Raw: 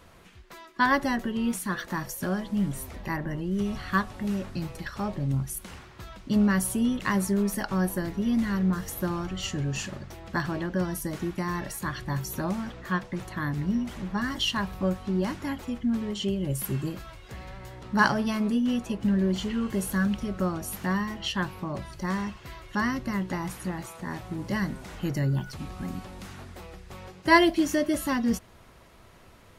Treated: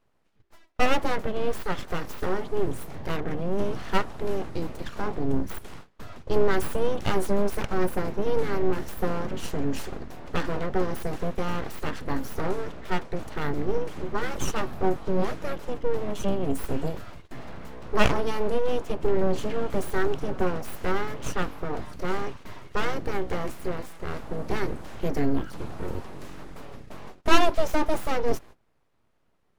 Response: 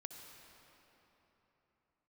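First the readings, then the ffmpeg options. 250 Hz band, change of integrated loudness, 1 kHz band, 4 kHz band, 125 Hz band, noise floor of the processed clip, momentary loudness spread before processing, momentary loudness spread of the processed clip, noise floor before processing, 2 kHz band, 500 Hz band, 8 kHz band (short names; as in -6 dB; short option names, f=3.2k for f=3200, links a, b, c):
-5.0 dB, -1.0 dB, +0.5 dB, -2.5 dB, -3.5 dB, -66 dBFS, 13 LU, 12 LU, -53 dBFS, -3.0 dB, +6.0 dB, -5.0 dB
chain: -af "aeval=exprs='abs(val(0))':c=same,tiltshelf=f=1.5k:g=4.5,agate=range=-20dB:threshold=-41dB:ratio=16:detection=peak,volume=1.5dB"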